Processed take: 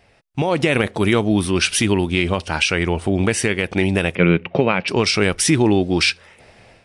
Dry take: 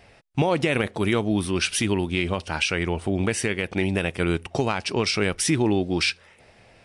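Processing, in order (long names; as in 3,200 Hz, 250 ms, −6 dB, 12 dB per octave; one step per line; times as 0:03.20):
automatic gain control gain up to 11.5 dB
0:04.15–0:04.88: loudspeaker in its box 130–3,200 Hz, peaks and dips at 180 Hz +9 dB, 530 Hz +7 dB, 780 Hz −4 dB, 2,300 Hz +6 dB
level −3 dB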